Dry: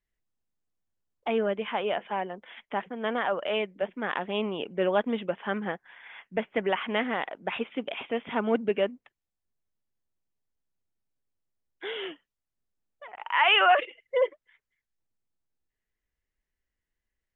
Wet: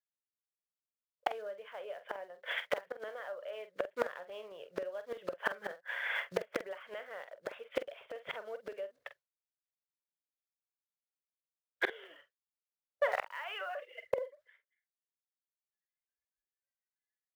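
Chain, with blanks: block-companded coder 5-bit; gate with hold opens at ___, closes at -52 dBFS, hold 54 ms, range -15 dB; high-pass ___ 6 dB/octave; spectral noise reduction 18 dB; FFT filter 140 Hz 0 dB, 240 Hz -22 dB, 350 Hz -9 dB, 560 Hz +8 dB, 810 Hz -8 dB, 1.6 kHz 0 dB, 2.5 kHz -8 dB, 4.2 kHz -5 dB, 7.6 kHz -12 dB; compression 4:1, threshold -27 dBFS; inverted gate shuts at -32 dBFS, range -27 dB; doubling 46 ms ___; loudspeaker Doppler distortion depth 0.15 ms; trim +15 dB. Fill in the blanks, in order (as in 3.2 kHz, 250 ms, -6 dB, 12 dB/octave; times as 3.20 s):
-46 dBFS, 510 Hz, -11 dB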